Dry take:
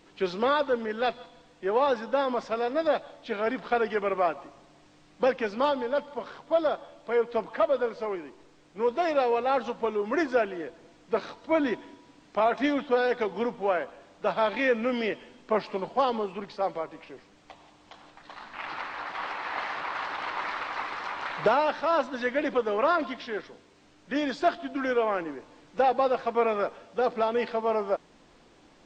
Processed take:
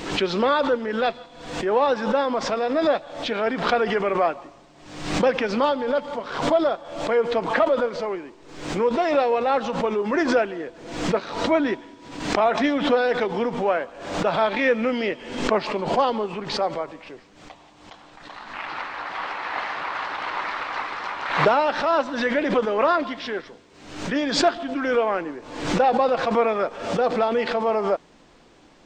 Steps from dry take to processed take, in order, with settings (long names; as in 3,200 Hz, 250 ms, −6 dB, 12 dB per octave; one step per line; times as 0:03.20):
background raised ahead of every attack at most 72 dB per second
level +4 dB